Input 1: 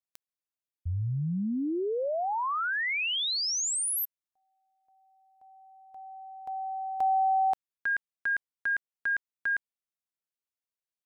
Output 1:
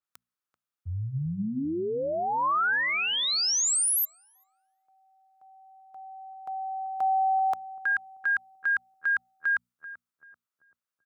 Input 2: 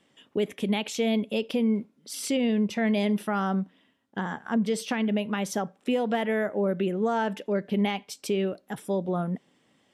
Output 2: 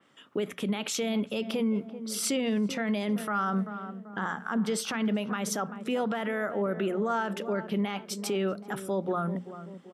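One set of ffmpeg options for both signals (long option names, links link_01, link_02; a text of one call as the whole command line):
ffmpeg -i in.wav -filter_complex "[0:a]highpass=frequency=82:width=0.5412,highpass=frequency=82:width=1.3066,equalizer=frequency=1300:width_type=o:width=0.55:gain=11.5,bandreject=frequency=60:width_type=h:width=6,bandreject=frequency=120:width_type=h:width=6,bandreject=frequency=180:width_type=h:width=6,bandreject=frequency=240:width_type=h:width=6,asplit=2[link_01][link_02];[link_02]adelay=387,lowpass=frequency=900:poles=1,volume=-14dB,asplit=2[link_03][link_04];[link_04]adelay=387,lowpass=frequency=900:poles=1,volume=0.54,asplit=2[link_05][link_06];[link_06]adelay=387,lowpass=frequency=900:poles=1,volume=0.54,asplit=2[link_07][link_08];[link_08]adelay=387,lowpass=frequency=900:poles=1,volume=0.54,asplit=2[link_09][link_10];[link_10]adelay=387,lowpass=frequency=900:poles=1,volume=0.54[link_11];[link_01][link_03][link_05][link_07][link_09][link_11]amix=inputs=6:normalize=0,alimiter=limit=-21dB:level=0:latency=1:release=25,adynamicequalizer=threshold=0.01:dfrequency=3800:dqfactor=0.7:tfrequency=3800:tqfactor=0.7:attack=5:release=100:ratio=0.375:range=2.5:mode=boostabove:tftype=highshelf" out.wav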